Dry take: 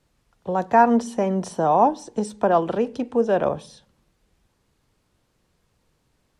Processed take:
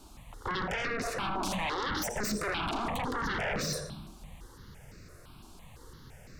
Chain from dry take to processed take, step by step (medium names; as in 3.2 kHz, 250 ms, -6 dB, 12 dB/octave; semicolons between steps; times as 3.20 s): 0.58–2.02 s: resonant high shelf 4.9 kHz -13.5 dB, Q 1.5; peak limiter -29.5 dBFS, peak gain reduction 25.5 dB; reverberation RT60 0.85 s, pre-delay 83 ms, DRR 10 dB; sine folder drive 14 dB, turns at -26.5 dBFS; stepped phaser 5.9 Hz 510–3200 Hz